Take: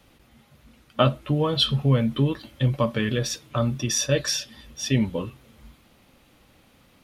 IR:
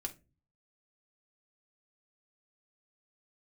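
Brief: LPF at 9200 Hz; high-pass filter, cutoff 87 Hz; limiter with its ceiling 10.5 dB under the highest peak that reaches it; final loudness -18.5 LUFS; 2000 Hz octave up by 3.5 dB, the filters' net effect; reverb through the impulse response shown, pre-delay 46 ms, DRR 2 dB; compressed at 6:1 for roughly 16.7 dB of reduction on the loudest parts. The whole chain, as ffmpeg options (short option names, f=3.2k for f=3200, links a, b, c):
-filter_complex "[0:a]highpass=87,lowpass=9.2k,equalizer=f=2k:t=o:g=4.5,acompressor=threshold=-33dB:ratio=6,alimiter=level_in=3dB:limit=-24dB:level=0:latency=1,volume=-3dB,asplit=2[a][b];[1:a]atrim=start_sample=2205,adelay=46[c];[b][c]afir=irnorm=-1:irlink=0,volume=-0.5dB[d];[a][d]amix=inputs=2:normalize=0,volume=17.5dB"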